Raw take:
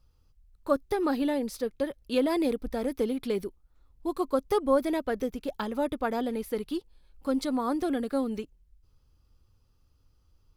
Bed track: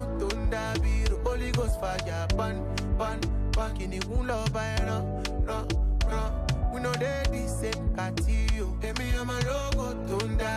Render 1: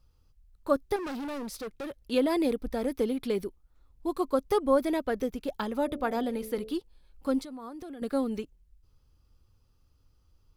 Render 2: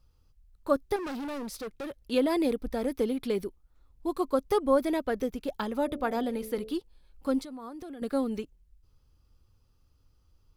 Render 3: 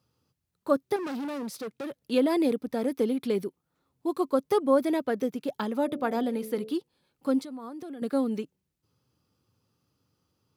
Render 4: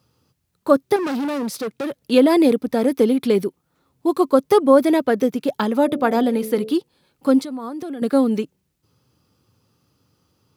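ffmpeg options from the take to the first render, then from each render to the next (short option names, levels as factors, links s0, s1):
-filter_complex "[0:a]asettb=1/sr,asplit=3[s0][s1][s2];[s0]atrim=end=0.964[s3];[s1]atrim=start=0.96:end=2.11,asetpts=PTS-STARTPTS,afade=t=in:d=0.004:c=qsin,afade=t=out:st=1.146:d=0.004:c=qsin,asoftclip=type=hard:threshold=0.02[s4];[s2]atrim=start=2.106[s5];[s3][s4]acrossfade=d=0.004:c1=hsin:c2=qsin[s6];[s6][s5]acrossfade=d=0.004:c1=qsin:c2=hsin,asettb=1/sr,asplit=3[s7][s8][s9];[s7]atrim=end=5.844[s10];[s8]atrim=start=5.84:end=6.73,asetpts=PTS-STARTPTS,afade=t=in:d=0.004:c=qsin,afade=t=out:st=0.886:d=0.004:c=qsin,bandreject=f=72.86:t=h:w=4,bandreject=f=145.72:t=h:w=4,bandreject=f=218.58:t=h:w=4,bandreject=f=291.44:t=h:w=4,bandreject=f=364.3:t=h:w=4,bandreject=f=437.16:t=h:w=4,bandreject=f=510.02:t=h:w=4,bandreject=f=582.88:t=h:w=4,bandreject=f=655.74:t=h:w=4,bandreject=f=728.6:t=h:w=4,bandreject=f=801.46:t=h:w=4[s11];[s9]atrim=start=6.726[s12];[s10][s11]acrossfade=d=0.004:c1=hsin:c2=qsin[s13];[s13][s12]acrossfade=d=0.004:c1=qsin:c2=hsin,asettb=1/sr,asplit=3[s14][s15][s16];[s14]atrim=end=7.394[s17];[s15]atrim=start=7.39:end=8.02,asetpts=PTS-STARTPTS,afade=t=in:d=0.004:c=qsin,afade=t=out:st=0.626:d=0.004:c=qsin,acompressor=threshold=0.0112:ratio=8:attack=3.2:release=140:knee=1:detection=peak[s18];[s16]atrim=start=8.016[s19];[s17][s18]acrossfade=d=0.004:c1=hsin:c2=qsin[s20];[s20][s19]acrossfade=d=0.004:c1=qsin:c2=hsin"
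-af anull
-af "highpass=f=130:w=0.5412,highpass=f=130:w=1.3066,lowshelf=f=380:g=4"
-af "volume=3.16,alimiter=limit=0.794:level=0:latency=1"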